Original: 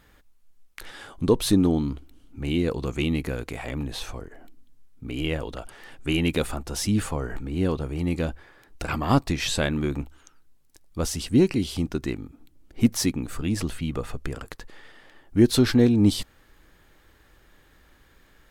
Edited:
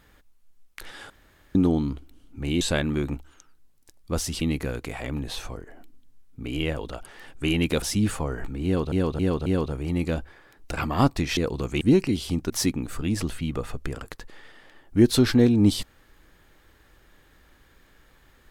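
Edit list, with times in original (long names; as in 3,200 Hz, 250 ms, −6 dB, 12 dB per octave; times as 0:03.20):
0:01.10–0:01.55: fill with room tone
0:02.61–0:03.05: swap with 0:09.48–0:11.28
0:06.46–0:06.74: remove
0:07.57–0:07.84: repeat, 4 plays
0:11.97–0:12.90: remove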